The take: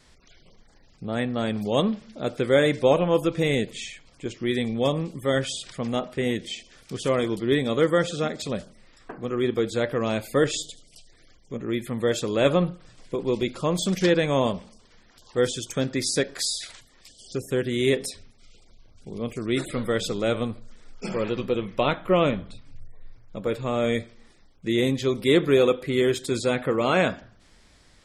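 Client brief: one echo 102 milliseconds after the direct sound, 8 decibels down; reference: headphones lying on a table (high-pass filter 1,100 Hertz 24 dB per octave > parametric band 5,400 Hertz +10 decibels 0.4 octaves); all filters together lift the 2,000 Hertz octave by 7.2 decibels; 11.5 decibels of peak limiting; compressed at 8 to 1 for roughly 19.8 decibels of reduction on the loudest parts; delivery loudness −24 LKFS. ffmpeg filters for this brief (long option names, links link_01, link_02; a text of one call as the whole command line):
ffmpeg -i in.wav -af "equalizer=frequency=2000:width_type=o:gain=8.5,acompressor=threshold=-35dB:ratio=8,alimiter=level_in=8.5dB:limit=-24dB:level=0:latency=1,volume=-8.5dB,highpass=frequency=1100:width=0.5412,highpass=frequency=1100:width=1.3066,equalizer=frequency=5400:width_type=o:width=0.4:gain=10,aecho=1:1:102:0.398,volume=20.5dB" out.wav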